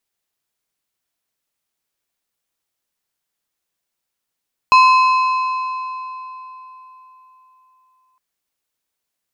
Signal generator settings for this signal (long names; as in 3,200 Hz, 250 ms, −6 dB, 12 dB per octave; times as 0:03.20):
struck metal plate, length 3.46 s, lowest mode 1,030 Hz, modes 7, decay 3.86 s, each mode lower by 8 dB, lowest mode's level −6 dB